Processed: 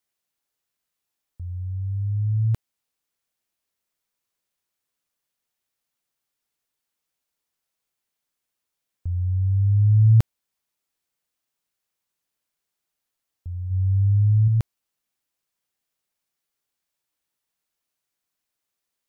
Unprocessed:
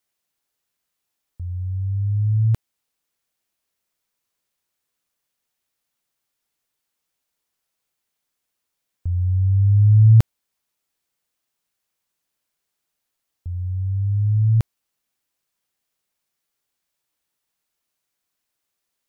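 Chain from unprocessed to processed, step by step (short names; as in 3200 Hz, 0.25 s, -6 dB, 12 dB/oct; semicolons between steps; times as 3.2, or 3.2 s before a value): 13.7–14.48 bell 97 Hz +6.5 dB 0.36 oct; gain -3.5 dB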